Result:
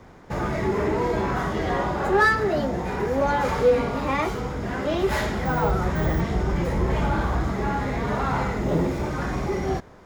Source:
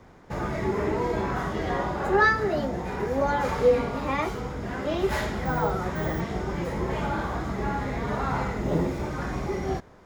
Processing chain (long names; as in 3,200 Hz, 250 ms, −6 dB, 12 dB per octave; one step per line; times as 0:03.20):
0:05.64–0:07.48: low-shelf EQ 95 Hz +10 dB
in parallel at −5 dB: hard clipping −26 dBFS, distortion −7 dB